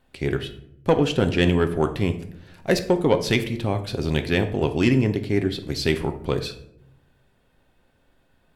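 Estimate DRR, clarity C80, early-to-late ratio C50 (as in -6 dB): 7.0 dB, 15.5 dB, 12.0 dB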